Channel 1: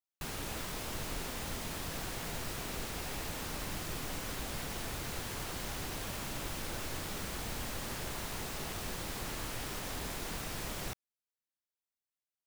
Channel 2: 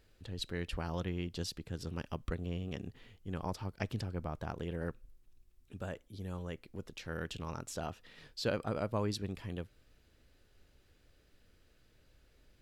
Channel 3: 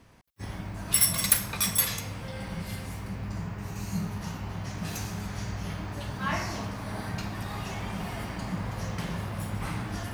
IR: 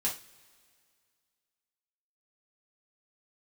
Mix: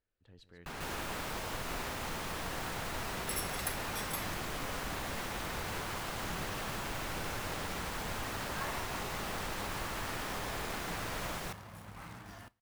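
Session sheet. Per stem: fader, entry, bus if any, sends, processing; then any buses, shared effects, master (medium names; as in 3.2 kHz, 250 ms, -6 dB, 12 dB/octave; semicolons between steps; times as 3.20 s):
-0.5 dB, 0.45 s, bus A, no send, echo send -3.5 dB, none
-14.5 dB, 0.00 s, bus A, send -23.5 dB, echo send -12.5 dB, peak limiter -32 dBFS, peak gain reduction 11 dB; upward expansion 1.5:1, over -58 dBFS
-18.5 dB, 2.35 s, no bus, send -21 dB, no echo send, companded quantiser 4-bit
bus A: 0.0 dB, treble shelf 5.1 kHz -7.5 dB; peak limiter -36 dBFS, peak gain reduction 9 dB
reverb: on, pre-delay 3 ms
echo: delay 144 ms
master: peaking EQ 1.2 kHz +6.5 dB 2.6 oct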